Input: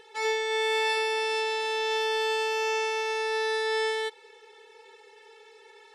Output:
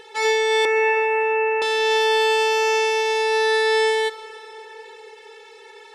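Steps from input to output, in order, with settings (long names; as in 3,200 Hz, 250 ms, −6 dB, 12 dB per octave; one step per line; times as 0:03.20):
0:00.65–0:01.62: Chebyshev low-pass filter 2,800 Hz, order 10
dense smooth reverb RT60 3.7 s, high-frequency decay 0.65×, DRR 12.5 dB
level +8.5 dB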